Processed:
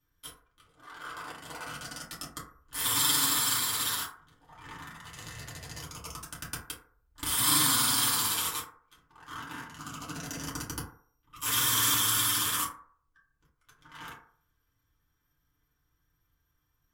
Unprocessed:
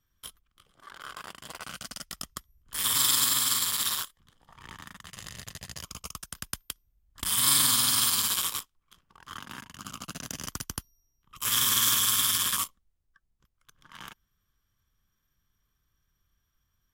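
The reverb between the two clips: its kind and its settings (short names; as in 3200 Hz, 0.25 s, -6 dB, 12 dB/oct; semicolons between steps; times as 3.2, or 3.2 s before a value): FDN reverb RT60 0.53 s, low-frequency decay 0.75×, high-frequency decay 0.35×, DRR -7 dB; gain -6 dB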